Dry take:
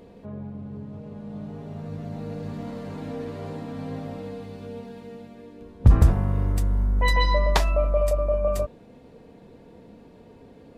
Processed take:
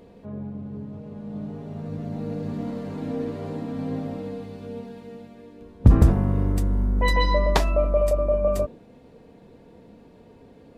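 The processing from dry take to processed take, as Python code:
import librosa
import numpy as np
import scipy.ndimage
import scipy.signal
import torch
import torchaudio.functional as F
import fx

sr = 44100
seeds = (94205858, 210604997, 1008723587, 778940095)

y = fx.dynamic_eq(x, sr, hz=280.0, q=0.74, threshold_db=-40.0, ratio=4.0, max_db=8)
y = y * librosa.db_to_amplitude(-1.0)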